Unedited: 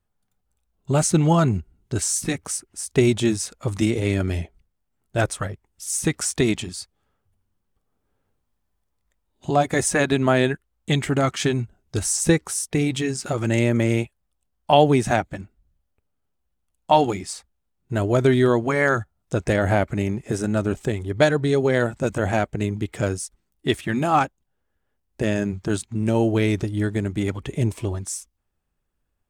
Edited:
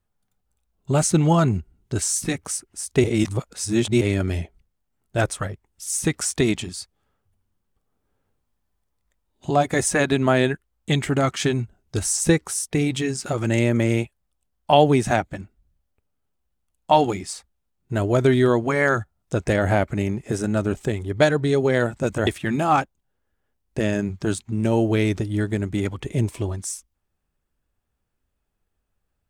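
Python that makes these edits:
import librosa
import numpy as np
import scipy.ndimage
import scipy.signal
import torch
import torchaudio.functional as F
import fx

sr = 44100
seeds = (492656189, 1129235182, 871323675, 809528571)

y = fx.edit(x, sr, fx.reverse_span(start_s=3.04, length_s=0.97),
    fx.cut(start_s=22.27, length_s=1.43), tone=tone)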